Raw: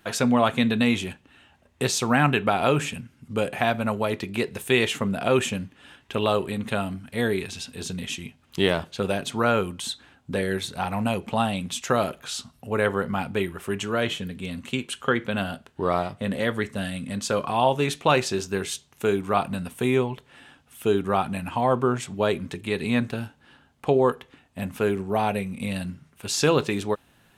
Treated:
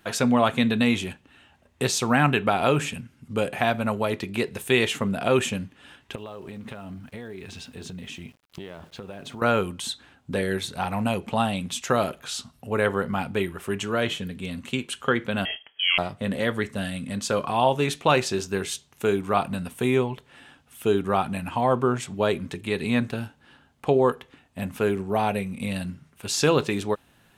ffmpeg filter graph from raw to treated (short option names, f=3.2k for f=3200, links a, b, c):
-filter_complex "[0:a]asettb=1/sr,asplit=3[a][b][c];[a]atrim=end=6.154[d];[b]atrim=start=6.15:end=9.42,asetpts=PTS-STARTPTS,afade=t=in:d=0.004:c=qsin,afade=t=out:st=3.266:d=0.004:c=qsin,highshelf=f=3.9k:g=-11,acompressor=threshold=-33dB:ratio=16:attack=3.2:release=140:knee=1:detection=peak,aeval=exprs='val(0)*gte(abs(val(0)),0.00178)':c=same[e];[c]atrim=start=9.416[f];[d][e]acrossfade=d=0.004:c1=hsin:c2=qsin[g];[g][f]acrossfade=d=0.004:c1=qsin:c2=hsin,asettb=1/sr,asplit=3[h][i][j];[h]atrim=end=15.454[k];[i]atrim=start=15.45:end=15.98,asetpts=PTS-STARTPTS,afade=t=in:d=0.004:c=qsin,afade=t=out:st=0.526:d=0.004:c=qsin,aecho=1:1:5.4:0.46,atrim=end_sample=23373,lowpass=f=2.9k:t=q:w=0.5098,lowpass=f=2.9k:t=q:w=0.6013,lowpass=f=2.9k:t=q:w=0.9,lowpass=f=2.9k:t=q:w=2.563,afreqshift=-3400[l];[j]atrim=start=15.976[m];[k][l]acrossfade=d=0.004:c1=hsin:c2=qsin[n];[n][m]acrossfade=d=0.004:c1=qsin:c2=hsin"